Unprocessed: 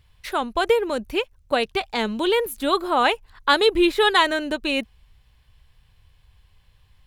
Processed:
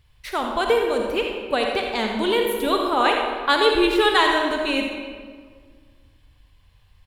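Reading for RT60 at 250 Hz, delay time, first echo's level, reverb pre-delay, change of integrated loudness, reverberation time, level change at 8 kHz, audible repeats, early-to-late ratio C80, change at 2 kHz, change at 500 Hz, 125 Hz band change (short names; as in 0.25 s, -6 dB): 2.1 s, 84 ms, -10.5 dB, 40 ms, +0.5 dB, 1.8 s, 0.0 dB, 1, 3.5 dB, +0.5 dB, +1.0 dB, n/a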